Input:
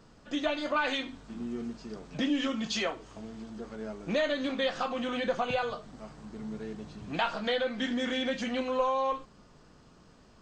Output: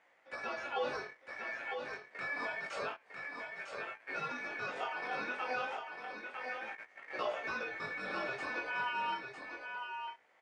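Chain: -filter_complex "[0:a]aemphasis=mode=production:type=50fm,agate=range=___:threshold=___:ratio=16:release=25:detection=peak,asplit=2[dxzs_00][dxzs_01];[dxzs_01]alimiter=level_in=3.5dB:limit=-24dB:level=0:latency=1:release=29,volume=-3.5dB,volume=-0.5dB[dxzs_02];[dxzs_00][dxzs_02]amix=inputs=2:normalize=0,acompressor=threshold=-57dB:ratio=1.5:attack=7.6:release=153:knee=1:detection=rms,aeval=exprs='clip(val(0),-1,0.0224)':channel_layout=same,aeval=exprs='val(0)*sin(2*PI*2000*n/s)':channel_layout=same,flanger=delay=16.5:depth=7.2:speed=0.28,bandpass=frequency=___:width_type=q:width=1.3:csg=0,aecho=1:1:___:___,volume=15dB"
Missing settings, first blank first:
-16dB, -45dB, 600, 953, 0.501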